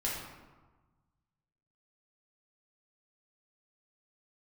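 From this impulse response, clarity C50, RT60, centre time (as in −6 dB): 1.0 dB, 1.3 s, 67 ms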